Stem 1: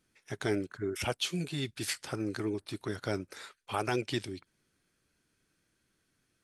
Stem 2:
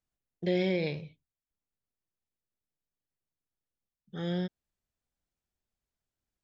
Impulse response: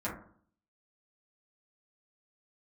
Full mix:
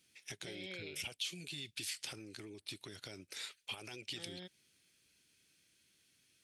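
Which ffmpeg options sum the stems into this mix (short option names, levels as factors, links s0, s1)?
-filter_complex "[0:a]highpass=65,alimiter=level_in=1.58:limit=0.0631:level=0:latency=1:release=38,volume=0.631,acompressor=threshold=0.00562:ratio=5,volume=0.668,asplit=2[s0][s1];[1:a]bass=f=250:g=-13,treble=f=4000:g=-14,acrossover=split=170|3000[s2][s3][s4];[s3]acompressor=threshold=0.0112:ratio=6[s5];[s2][s5][s4]amix=inputs=3:normalize=0,volume=0.473[s6];[s1]apad=whole_len=283671[s7];[s6][s7]sidechaincompress=threshold=0.00251:ratio=8:attack=16:release=400[s8];[s0][s8]amix=inputs=2:normalize=0,highshelf=f=1900:t=q:w=1.5:g=10"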